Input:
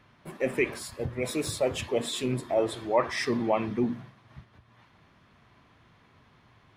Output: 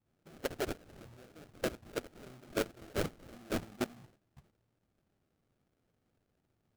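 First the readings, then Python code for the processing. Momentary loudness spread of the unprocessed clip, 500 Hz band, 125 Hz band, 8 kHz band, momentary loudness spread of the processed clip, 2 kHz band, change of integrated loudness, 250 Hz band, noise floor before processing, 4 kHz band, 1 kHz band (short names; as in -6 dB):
6 LU, -12.0 dB, -10.5 dB, -10.5 dB, 17 LU, -10.0 dB, -10.5 dB, -11.0 dB, -61 dBFS, -10.5 dB, -13.5 dB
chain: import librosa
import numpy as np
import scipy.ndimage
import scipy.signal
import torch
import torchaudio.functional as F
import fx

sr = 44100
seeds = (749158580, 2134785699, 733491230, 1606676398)

y = fx.highpass(x, sr, hz=56.0, slope=6)
y = fx.high_shelf(y, sr, hz=4600.0, db=10.0)
y = fx.level_steps(y, sr, step_db=24)
y = fx.dispersion(y, sr, late='highs', ms=119.0, hz=1400.0)
y = fx.sample_hold(y, sr, seeds[0], rate_hz=1000.0, jitter_pct=20)
y = F.gain(torch.from_numpy(y), -6.0).numpy()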